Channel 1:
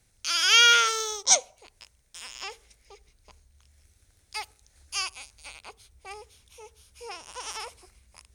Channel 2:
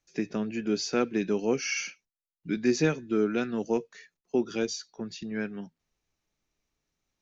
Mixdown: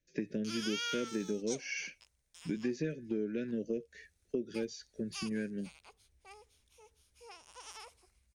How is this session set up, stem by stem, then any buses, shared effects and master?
-13.0 dB, 0.20 s, no send, none
+1.0 dB, 0.00 s, no send, elliptic band-stop 590–1600 Hz; treble shelf 2.7 kHz -11 dB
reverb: none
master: compression 4:1, threshold -33 dBFS, peak gain reduction 12.5 dB

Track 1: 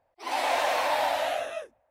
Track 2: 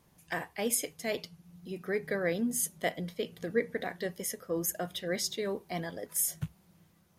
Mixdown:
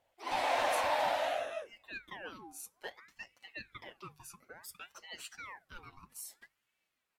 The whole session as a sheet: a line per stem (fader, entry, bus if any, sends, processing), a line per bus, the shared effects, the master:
-5.0 dB, 0.00 s, no send, none
-11.5 dB, 0.00 s, no send, tone controls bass -14 dB, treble +1 dB; comb 7.2 ms, depth 71%; ring modulator with a swept carrier 1.5 kHz, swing 65%, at 0.59 Hz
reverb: none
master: treble shelf 6.7 kHz -6.5 dB; hum notches 50/100/150 Hz

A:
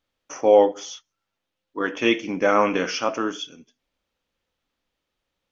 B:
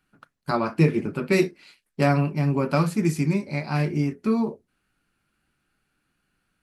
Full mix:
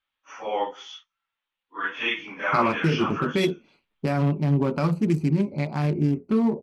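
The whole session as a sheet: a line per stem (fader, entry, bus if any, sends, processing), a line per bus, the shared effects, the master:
-15.0 dB, 0.00 s, no send, phase randomisation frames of 100 ms; high-order bell 1.8 kHz +14.5 dB 2.5 oct
+2.5 dB, 2.05 s, no send, local Wiener filter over 25 samples; peak limiter -16 dBFS, peak gain reduction 9 dB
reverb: none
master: none

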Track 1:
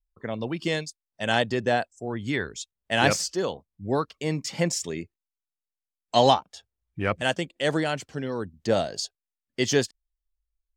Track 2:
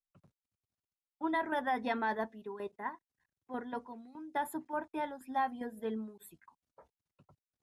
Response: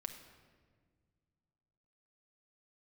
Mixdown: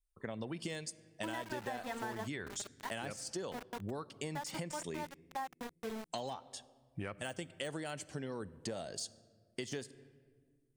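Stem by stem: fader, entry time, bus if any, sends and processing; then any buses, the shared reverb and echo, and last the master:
-6.5 dB, 0.00 s, send -8.5 dB, de-esser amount 70%; peaking EQ 9.1 kHz +13.5 dB 0.47 oct; compression 3:1, threshold -29 dBFS, peak gain reduction 11 dB
-1.0 dB, 0.00 s, no send, de-hum 51.03 Hz, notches 20; small samples zeroed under -37.5 dBFS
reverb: on, RT60 1.7 s, pre-delay 5 ms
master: compression, threshold -37 dBFS, peak gain reduction 10 dB

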